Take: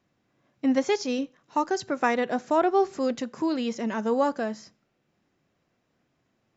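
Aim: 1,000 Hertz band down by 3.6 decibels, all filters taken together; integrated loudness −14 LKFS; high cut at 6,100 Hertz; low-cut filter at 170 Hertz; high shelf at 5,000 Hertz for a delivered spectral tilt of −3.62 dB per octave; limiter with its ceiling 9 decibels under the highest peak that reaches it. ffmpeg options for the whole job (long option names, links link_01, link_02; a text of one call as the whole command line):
ffmpeg -i in.wav -af "highpass=170,lowpass=6100,equalizer=frequency=1000:width_type=o:gain=-4.5,highshelf=frequency=5000:gain=-8,volume=17.5dB,alimiter=limit=-3.5dB:level=0:latency=1" out.wav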